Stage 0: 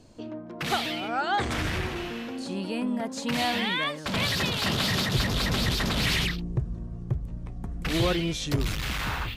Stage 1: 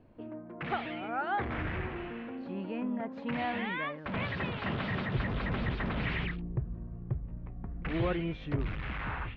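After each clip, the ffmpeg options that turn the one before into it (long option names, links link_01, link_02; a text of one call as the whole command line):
ffmpeg -i in.wav -af "lowpass=frequency=2400:width=0.5412,lowpass=frequency=2400:width=1.3066,volume=-5.5dB" out.wav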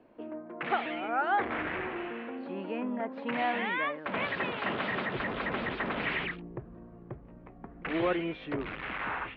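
ffmpeg -i in.wav -filter_complex "[0:a]acrossover=split=240 4400:gain=0.1 1 0.0891[link_01][link_02][link_03];[link_01][link_02][link_03]amix=inputs=3:normalize=0,volume=4.5dB" out.wav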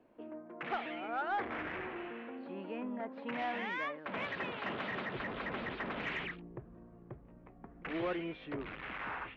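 ffmpeg -i in.wav -af "asoftclip=type=tanh:threshold=-20dB,volume=-6dB" out.wav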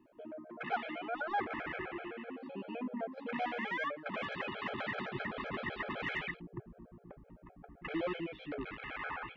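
ffmpeg -i in.wav -af "afftfilt=real='re*gt(sin(2*PI*7.8*pts/sr)*(1-2*mod(floor(b*sr/1024/430),2)),0)':imag='im*gt(sin(2*PI*7.8*pts/sr)*(1-2*mod(floor(b*sr/1024/430),2)),0)':win_size=1024:overlap=0.75,volume=3.5dB" out.wav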